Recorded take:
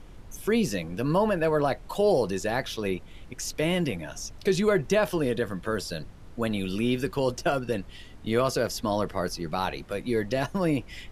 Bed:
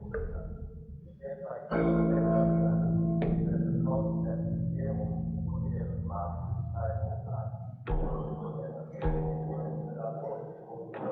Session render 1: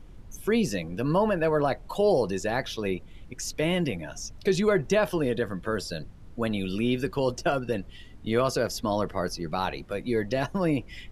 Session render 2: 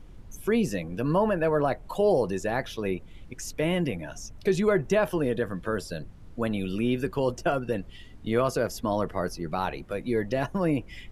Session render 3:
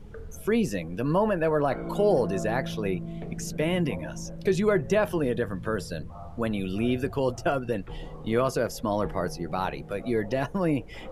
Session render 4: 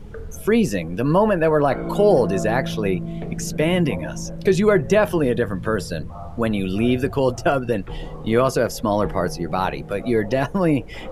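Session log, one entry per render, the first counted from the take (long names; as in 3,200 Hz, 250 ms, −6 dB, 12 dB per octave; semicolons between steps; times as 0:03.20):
broadband denoise 6 dB, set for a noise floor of −46 dBFS
dynamic equaliser 4,500 Hz, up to −7 dB, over −50 dBFS, Q 1.2
mix in bed −8 dB
level +7 dB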